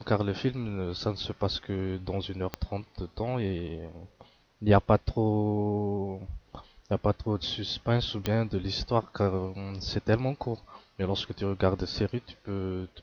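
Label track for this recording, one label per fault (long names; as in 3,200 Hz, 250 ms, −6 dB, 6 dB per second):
2.540000	2.540000	click −16 dBFS
8.260000	8.260000	click −14 dBFS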